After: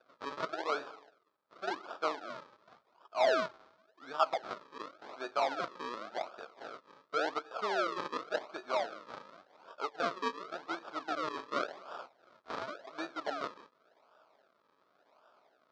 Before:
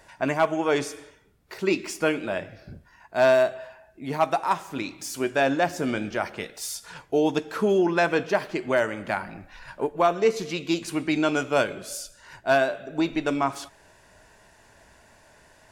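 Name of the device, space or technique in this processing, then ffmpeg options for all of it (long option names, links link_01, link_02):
circuit-bent sampling toy: -af "acrusher=samples=42:mix=1:aa=0.000001:lfo=1:lforange=42:lforate=0.9,highpass=580,equalizer=frequency=660:width_type=q:width=4:gain=4,equalizer=frequency=1300:width_type=q:width=4:gain=9,equalizer=frequency=1900:width_type=q:width=4:gain=-5,equalizer=frequency=2800:width_type=q:width=4:gain=-7,lowpass=frequency=4700:width=0.5412,lowpass=frequency=4700:width=1.3066,volume=-9dB"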